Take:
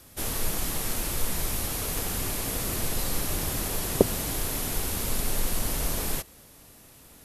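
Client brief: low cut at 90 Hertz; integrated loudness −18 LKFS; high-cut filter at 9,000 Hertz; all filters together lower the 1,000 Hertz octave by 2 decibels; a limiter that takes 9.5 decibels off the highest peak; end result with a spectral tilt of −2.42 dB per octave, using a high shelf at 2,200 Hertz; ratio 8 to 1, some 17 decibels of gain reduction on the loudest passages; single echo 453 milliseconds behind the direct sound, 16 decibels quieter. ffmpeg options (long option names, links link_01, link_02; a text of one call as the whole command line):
ffmpeg -i in.wav -af "highpass=90,lowpass=9000,equalizer=frequency=1000:width_type=o:gain=-3.5,highshelf=frequency=2200:gain=4,acompressor=threshold=-35dB:ratio=8,alimiter=level_in=5.5dB:limit=-24dB:level=0:latency=1,volume=-5.5dB,aecho=1:1:453:0.158,volume=20dB" out.wav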